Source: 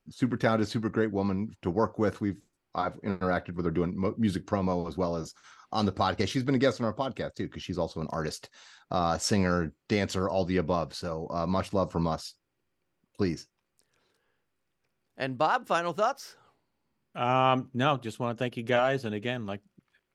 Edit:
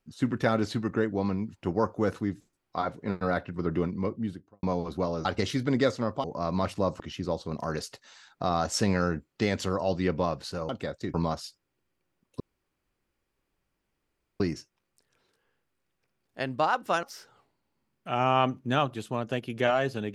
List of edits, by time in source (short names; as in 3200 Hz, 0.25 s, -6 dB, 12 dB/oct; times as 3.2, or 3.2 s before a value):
3.9–4.63 studio fade out
5.25–6.06 cut
7.05–7.5 swap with 11.19–11.95
13.21 insert room tone 2.00 s
15.84–16.12 cut